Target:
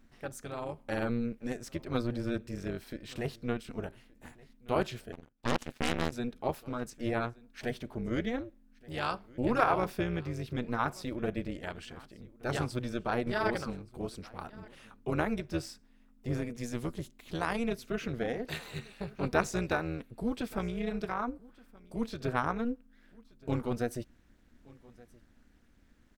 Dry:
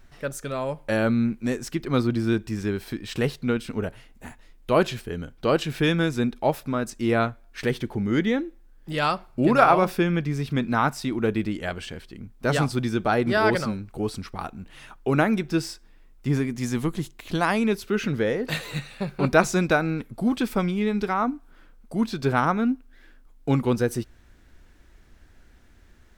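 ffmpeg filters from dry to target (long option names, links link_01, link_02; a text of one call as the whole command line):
ffmpeg -i in.wav -filter_complex "[0:a]tremolo=f=240:d=0.824,aecho=1:1:1174:0.0668,asettb=1/sr,asplit=3[link_01][link_02][link_03];[link_01]atrim=end=5.124[link_04];[link_02]atrim=start=5.12:end=6.12,asetpts=PTS-STARTPTS,afade=type=in:duration=0.004:curve=qsin,afade=type=out:start_time=0.996:duration=0.004:curve=qsin,aeval=exprs='0.316*(cos(1*acos(clip(val(0)/0.316,-1,1)))-cos(1*PI/2))+0.0891*(cos(3*acos(clip(val(0)/0.316,-1,1)))-cos(3*PI/2))+0.141*(cos(6*acos(clip(val(0)/0.316,-1,1)))-cos(6*PI/2))+0.0501*(cos(8*acos(clip(val(0)/0.316,-1,1)))-cos(8*PI/2))':channel_layout=same[link_05];[link_03]atrim=start=6.116[link_06];[link_04][link_05]acrossfade=duration=0.004:curve1=hsin:curve2=qsin[link_07];[link_07][link_06]acrossfade=duration=0.004:curve1=qsin:curve2=hsin,volume=-6.5dB" out.wav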